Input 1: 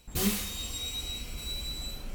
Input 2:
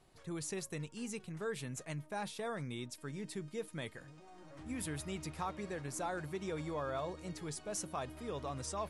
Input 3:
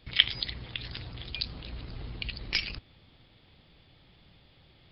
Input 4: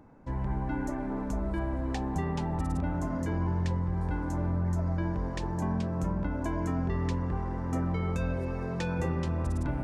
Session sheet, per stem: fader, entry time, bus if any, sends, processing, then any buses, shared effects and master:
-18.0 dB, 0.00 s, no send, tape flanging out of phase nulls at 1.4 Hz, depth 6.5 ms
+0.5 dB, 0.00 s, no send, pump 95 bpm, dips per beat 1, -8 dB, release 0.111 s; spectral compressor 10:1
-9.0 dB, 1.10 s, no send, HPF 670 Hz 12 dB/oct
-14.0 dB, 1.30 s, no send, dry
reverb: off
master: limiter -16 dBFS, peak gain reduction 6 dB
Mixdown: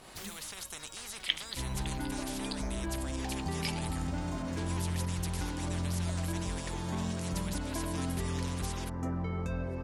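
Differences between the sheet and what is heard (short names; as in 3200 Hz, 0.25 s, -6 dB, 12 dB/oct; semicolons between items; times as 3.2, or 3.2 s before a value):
stem 1: missing tape flanging out of phase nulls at 1.4 Hz, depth 6.5 ms; stem 4 -14.0 dB -> -4.5 dB; master: missing limiter -16 dBFS, peak gain reduction 6 dB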